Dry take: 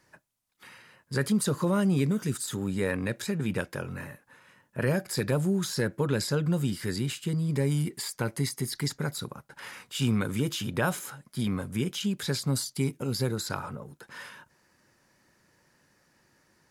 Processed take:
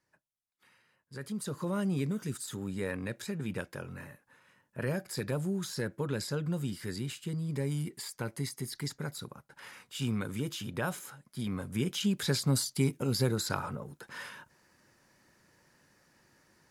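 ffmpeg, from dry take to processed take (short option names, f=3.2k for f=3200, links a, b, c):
-af "afade=t=in:st=1.18:d=0.63:silence=0.375837,afade=t=in:st=11.45:d=0.64:silence=0.473151"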